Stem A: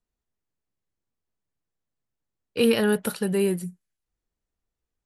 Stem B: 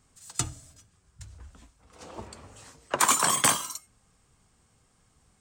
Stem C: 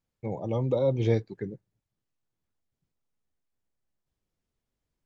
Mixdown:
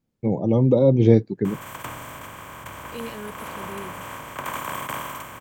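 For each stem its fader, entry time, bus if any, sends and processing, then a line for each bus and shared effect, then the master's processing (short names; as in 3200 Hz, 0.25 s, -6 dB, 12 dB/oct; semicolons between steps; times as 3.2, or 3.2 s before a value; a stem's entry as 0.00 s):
-15.0 dB, 0.35 s, no send, dry
-11.0 dB, 1.45 s, no send, per-bin compression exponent 0.2; band shelf 6200 Hz -14.5 dB
+1.5 dB, 0.00 s, no send, bell 230 Hz +13 dB 2.2 oct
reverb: off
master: dry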